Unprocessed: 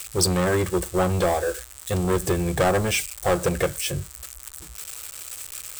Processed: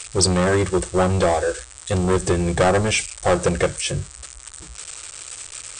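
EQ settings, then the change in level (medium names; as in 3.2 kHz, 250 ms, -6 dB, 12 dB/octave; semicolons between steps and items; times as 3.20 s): brick-wall FIR low-pass 9.3 kHz; +3.5 dB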